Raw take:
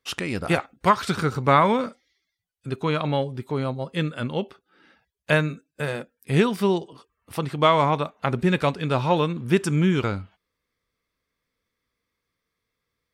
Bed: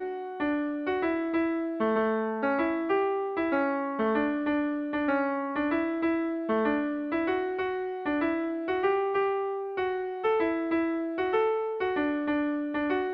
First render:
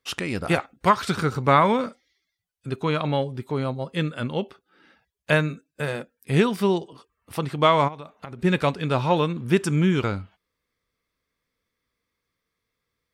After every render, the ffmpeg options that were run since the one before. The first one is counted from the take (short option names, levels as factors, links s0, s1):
-filter_complex "[0:a]asplit=3[s0][s1][s2];[s0]afade=t=out:st=7.87:d=0.02[s3];[s1]acompressor=threshold=0.0224:ratio=8:attack=3.2:release=140:knee=1:detection=peak,afade=t=in:st=7.87:d=0.02,afade=t=out:st=8.43:d=0.02[s4];[s2]afade=t=in:st=8.43:d=0.02[s5];[s3][s4][s5]amix=inputs=3:normalize=0"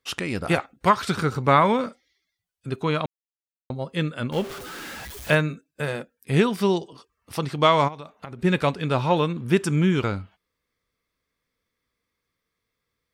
-filter_complex "[0:a]asettb=1/sr,asplit=3[s0][s1][s2];[s0]atrim=end=4.324[s3];[s1]atrim=start=4.32:end=5.35,asetpts=PTS-STARTPTS,afade=t=in:d=0.004:c=qsin,afade=t=out:st=1.026:d=0.004:c=qsin,aeval=exprs='val(0)+0.5*0.0266*sgn(val(0))':c=same[s4];[s2]atrim=start=5.346[s5];[s3][s4]acrossfade=d=0.004:c1=hsin:c2=qsin[s6];[s6][s5]acrossfade=d=0.004:c1=qsin:c2=hsin,asettb=1/sr,asplit=3[s7][s8][s9];[s7]atrim=end=6.604[s10];[s8]atrim=start=6.6:end=8.12,asetpts=PTS-STARTPTS,afade=t=in:d=0.004:c=qsin,afade=t=out:st=1.516:d=0.004:c=qsin,equalizer=f=5400:w=1.5:g=6.5[s11];[s9]atrim=start=8.116[s12];[s10][s11]acrossfade=d=0.004:c1=hsin:c2=qsin[s13];[s13][s12]acrossfade=d=0.004:c1=qsin:c2=hsin,asplit=3[s14][s15][s16];[s14]atrim=end=3.06,asetpts=PTS-STARTPTS,afade=t=out:st=3.056:d=0.004:c=hsin[s17];[s15]atrim=start=3.06:end=3.7,asetpts=PTS-STARTPTS,volume=0[s18];[s16]atrim=start=3.7,asetpts=PTS-STARTPTS,afade=t=in:d=0.004:c=hsin[s19];[s17][s18][s19]concat=n=3:v=0:a=1"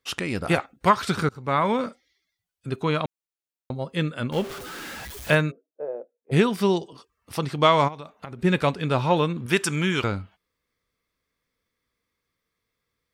-filter_complex "[0:a]asplit=3[s0][s1][s2];[s0]afade=t=out:st=5.5:d=0.02[s3];[s1]asuperpass=centerf=530:order=4:qfactor=1.6,afade=t=in:st=5.5:d=0.02,afade=t=out:st=6.31:d=0.02[s4];[s2]afade=t=in:st=6.31:d=0.02[s5];[s3][s4][s5]amix=inputs=3:normalize=0,asettb=1/sr,asplit=3[s6][s7][s8];[s6]atrim=end=9.464[s9];[s7]atrim=start=9.46:end=10.04,asetpts=PTS-STARTPTS,afade=t=in:d=0.004:c=qsin,afade=t=out:st=0.576:d=0.004:c=qsin,tiltshelf=f=650:g=-6.5[s10];[s8]atrim=start=10.036[s11];[s9][s10]acrossfade=d=0.004:c1=hsin:c2=qsin[s12];[s12][s11]acrossfade=d=0.004:c1=qsin:c2=hsin,asplit=2[s13][s14];[s13]atrim=end=1.29,asetpts=PTS-STARTPTS,afade=t=out:st=1.286:d=0.004:c=hsin:silence=0.0841395[s15];[s14]atrim=start=1.29,asetpts=PTS-STARTPTS,afade=t=in:d=0.57:silence=0.0841395[s16];[s15][s16]concat=n=2:v=0:a=1"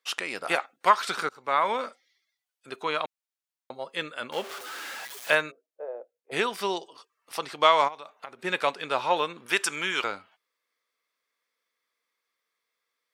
-af "highpass=610,highshelf=f=11000:g=-3"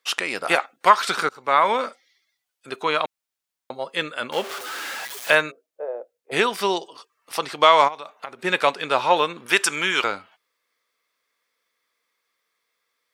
-af "volume=2.11,alimiter=limit=0.891:level=0:latency=1"